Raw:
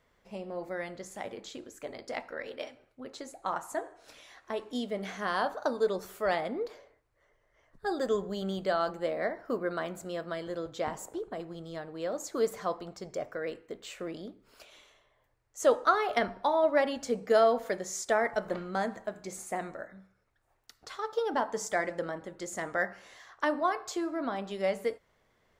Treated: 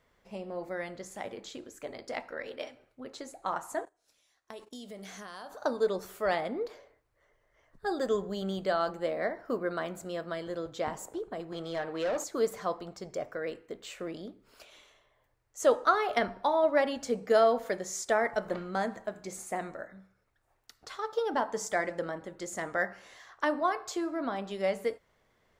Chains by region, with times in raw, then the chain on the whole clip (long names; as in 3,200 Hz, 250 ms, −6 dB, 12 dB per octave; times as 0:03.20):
0:03.85–0:05.62: noise gate −47 dBFS, range −22 dB + bass and treble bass +2 dB, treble +12 dB + downward compressor 4 to 1, threshold −43 dBFS
0:11.52–0:12.24: bass and treble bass 0 dB, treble −5 dB + mid-hump overdrive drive 18 dB, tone 7,400 Hz, clips at −23.5 dBFS
whole clip: no processing